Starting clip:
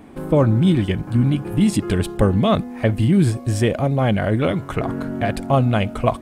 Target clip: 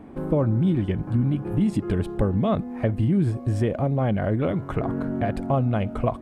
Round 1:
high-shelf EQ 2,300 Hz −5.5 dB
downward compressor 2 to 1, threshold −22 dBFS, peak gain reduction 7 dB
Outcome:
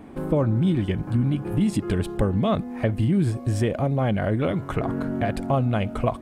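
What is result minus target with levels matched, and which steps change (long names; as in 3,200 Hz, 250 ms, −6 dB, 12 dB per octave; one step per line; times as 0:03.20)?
4,000 Hz band +5.5 dB
change: high-shelf EQ 2,300 Hz −14.5 dB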